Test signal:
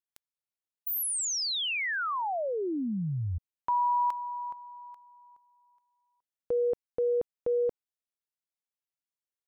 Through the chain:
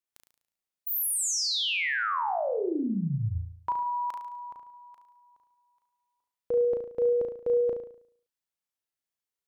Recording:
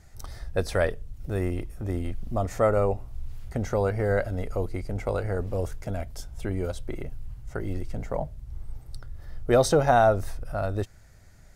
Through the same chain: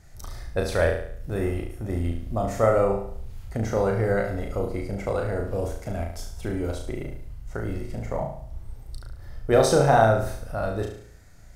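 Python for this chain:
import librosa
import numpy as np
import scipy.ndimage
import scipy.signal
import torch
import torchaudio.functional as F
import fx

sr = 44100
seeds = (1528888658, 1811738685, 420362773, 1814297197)

y = fx.room_flutter(x, sr, wall_m=6.1, rt60_s=0.58)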